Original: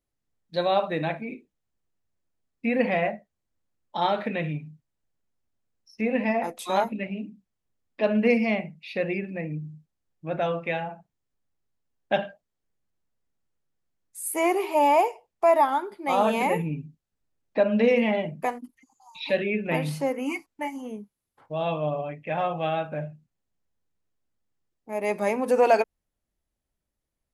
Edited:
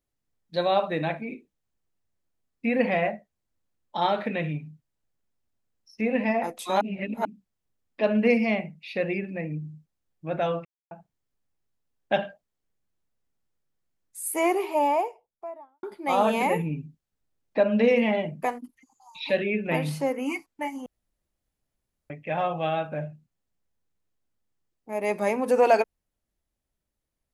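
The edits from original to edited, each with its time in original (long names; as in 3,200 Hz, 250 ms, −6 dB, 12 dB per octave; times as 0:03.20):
0:06.81–0:07.25: reverse
0:10.65–0:10.91: silence
0:14.35–0:15.83: fade out and dull
0:20.86–0:22.10: fill with room tone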